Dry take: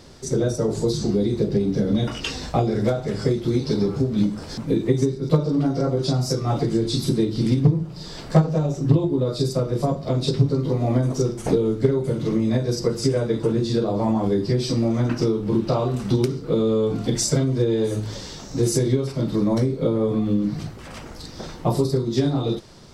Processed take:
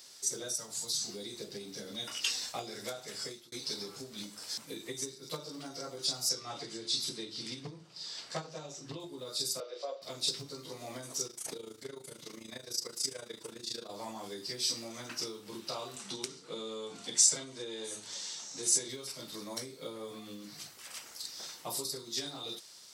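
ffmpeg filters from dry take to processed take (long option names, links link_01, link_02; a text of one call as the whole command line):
ffmpeg -i in.wav -filter_complex "[0:a]asettb=1/sr,asplit=3[link_01][link_02][link_03];[link_01]atrim=end=0.544[link_04];[link_02]atrim=start=0.54:end=1.08,asetpts=PTS-STARTPTS,afade=type=in:duration=0.004:curve=qsin,afade=type=out:start_time=0.536:duration=0.004:curve=qsin,equalizer=frequency=390:width=1.7:gain=-15[link_05];[link_03]atrim=start=1.076[link_06];[link_04][link_05]acrossfade=duration=0.004:curve1=hsin:curve2=qsin[link_07];[link_07][link_06]acrossfade=duration=0.004:curve1=qsin:curve2=hsin,asettb=1/sr,asplit=3[link_08][link_09][link_10];[link_08]atrim=end=6.294[link_11];[link_09]atrim=start=6.29:end=9,asetpts=PTS-STARTPTS,afade=type=in:duration=0.004:curve=qsin,afade=type=out:start_time=2.706:duration=0.004:curve=qsin,lowpass=5900[link_12];[link_10]atrim=start=8.996[link_13];[link_11][link_12]acrossfade=duration=0.004:curve1=hsin:curve2=qsin[link_14];[link_14][link_13]acrossfade=duration=0.004:curve1=qsin:curve2=hsin,asettb=1/sr,asplit=3[link_15][link_16][link_17];[link_15]atrim=end=9.604[link_18];[link_16]atrim=start=9.6:end=10.02,asetpts=PTS-STARTPTS,afade=type=in:duration=0.004:curve=qsin,afade=type=out:start_time=0.416:duration=0.004:curve=qsin,highpass=frequency=410:width=0.5412,highpass=frequency=410:width=1.3066,equalizer=frequency=540:width_type=q:width=4:gain=10,equalizer=frequency=940:width_type=q:width=4:gain=-7,equalizer=frequency=1800:width_type=q:width=4:gain=-3,lowpass=frequency=4600:width=0.5412,lowpass=frequency=4600:width=1.3066[link_19];[link_17]atrim=start=10.016[link_20];[link_18][link_19]acrossfade=duration=0.004:curve1=hsin:curve2=qsin[link_21];[link_21][link_20]acrossfade=duration=0.004:curve1=qsin:curve2=hsin,asettb=1/sr,asplit=3[link_22][link_23][link_24];[link_22]atrim=end=11.274[link_25];[link_23]atrim=start=11.27:end=13.9,asetpts=PTS-STARTPTS,afade=type=in:duration=0.004:curve=qsin,afade=type=out:start_time=2.626:duration=0.004:curve=qsin,tremolo=f=27:d=0.788[link_26];[link_24]atrim=start=13.896[link_27];[link_25][link_26]acrossfade=duration=0.004:curve1=hsin:curve2=qsin[link_28];[link_28][link_27]acrossfade=duration=0.004:curve1=qsin:curve2=hsin,asettb=1/sr,asplit=3[link_29][link_30][link_31];[link_29]atrim=end=15.964[link_32];[link_30]atrim=start=15.96:end=18.89,asetpts=PTS-STARTPTS,afade=type=in:duration=0.004:curve=qsin,afade=type=out:start_time=2.926:duration=0.004:curve=qsin,highpass=140,equalizer=frequency=180:width_type=q:width=4:gain=6,equalizer=frequency=870:width_type=q:width=4:gain=3,equalizer=frequency=4900:width_type=q:width=4:gain=-4,lowpass=frequency=9100:width=0.5412,lowpass=frequency=9100:width=1.3066[link_33];[link_31]atrim=start=18.886[link_34];[link_32][link_33]acrossfade=duration=0.004:curve1=hsin:curve2=qsin[link_35];[link_35][link_34]acrossfade=duration=0.004:curve1=qsin:curve2=hsin,asplit=2[link_36][link_37];[link_36]atrim=end=3.52,asetpts=PTS-STARTPTS,afade=type=out:start_time=3.11:duration=0.41:curve=qsin[link_38];[link_37]atrim=start=3.52,asetpts=PTS-STARTPTS,afade=type=in:duration=0.004:curve=hsin[link_39];[link_38][link_39]concat=n=2:v=0:a=1,aderivative,volume=3dB" out.wav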